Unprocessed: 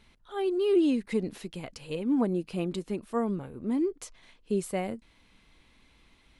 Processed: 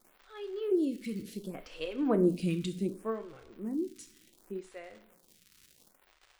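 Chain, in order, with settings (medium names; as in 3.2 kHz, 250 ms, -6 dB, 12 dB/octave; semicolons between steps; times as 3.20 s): Doppler pass-by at 2.16 s, 21 m/s, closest 11 m; peaking EQ 870 Hz -9 dB 0.51 oct; crackle 210 per s -46 dBFS; two-slope reverb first 0.48 s, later 1.7 s, from -18 dB, DRR 7 dB; lamp-driven phase shifter 0.68 Hz; trim +4 dB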